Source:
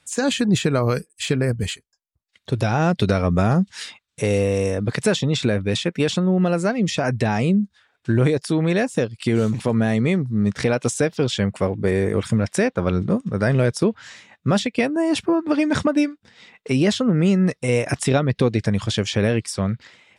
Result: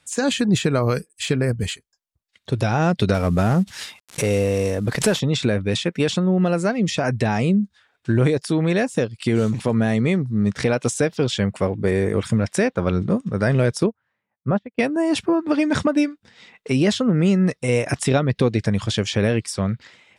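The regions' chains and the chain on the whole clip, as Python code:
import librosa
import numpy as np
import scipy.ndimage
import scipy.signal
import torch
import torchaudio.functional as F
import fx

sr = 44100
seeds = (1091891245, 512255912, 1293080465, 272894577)

y = fx.chain(x, sr, fx.cvsd(bps=64000),
    fx.pre_swell(db_per_s=110.0), at=(3.14, 5.2))
y = fx.chain(y, sr, fx.lowpass(hz=1300.0, slope=12),
    fx.peak_eq(hz=290.0, db=-4.0, octaves=0.43),
    fx.upward_expand(threshold_db=-33.0, expansion=2.5), at=(13.86, 14.79))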